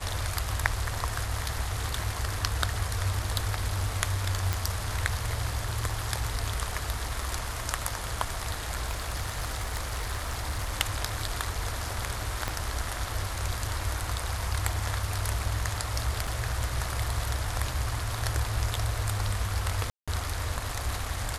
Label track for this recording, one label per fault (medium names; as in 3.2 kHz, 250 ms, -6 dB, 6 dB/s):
4.530000	4.530000	pop -12 dBFS
8.850000	10.750000	clipped -26 dBFS
12.480000	12.480000	pop -14 dBFS
16.270000	16.270000	dropout 3.5 ms
19.900000	20.080000	dropout 176 ms